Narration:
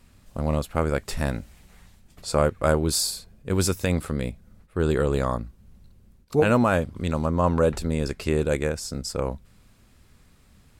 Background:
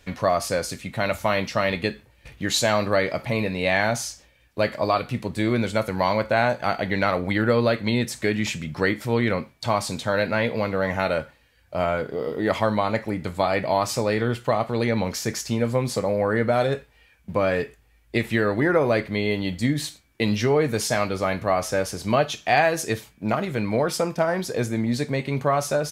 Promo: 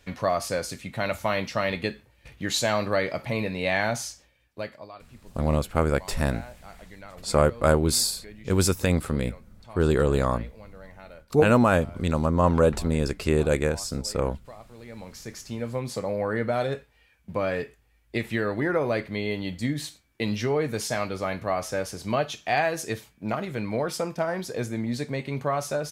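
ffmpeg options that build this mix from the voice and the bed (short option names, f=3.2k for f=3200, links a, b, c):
-filter_complex "[0:a]adelay=5000,volume=1dB[a];[1:a]volume=14.5dB,afade=t=out:st=4.07:d=0.82:silence=0.105925,afade=t=in:st=14.81:d=1.34:silence=0.125893[b];[a][b]amix=inputs=2:normalize=0"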